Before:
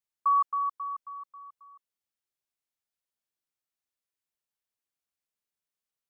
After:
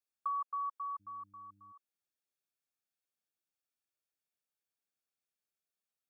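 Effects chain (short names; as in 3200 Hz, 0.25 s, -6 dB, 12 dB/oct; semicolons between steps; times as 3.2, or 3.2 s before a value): compressor 5:1, threshold -30 dBFS, peak gain reduction 8 dB; notch comb 1000 Hz; 0.99–1.71 buzz 100 Hz, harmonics 3, -67 dBFS -3 dB/oct; gain -2.5 dB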